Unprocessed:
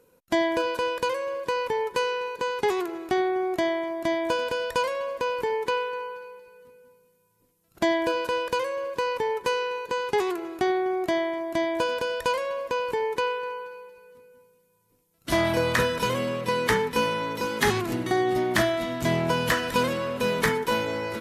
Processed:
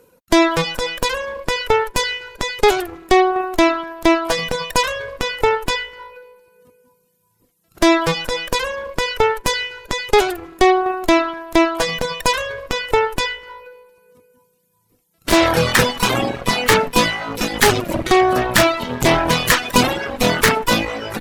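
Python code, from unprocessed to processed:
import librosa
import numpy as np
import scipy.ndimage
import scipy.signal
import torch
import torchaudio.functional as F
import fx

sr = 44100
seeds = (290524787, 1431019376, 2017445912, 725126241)

y = fx.cheby_harmonics(x, sr, harmonics=(6,), levels_db=(-9,), full_scale_db=-12.0)
y = fx.dereverb_blind(y, sr, rt60_s=1.2)
y = y * librosa.db_to_amplitude(8.5)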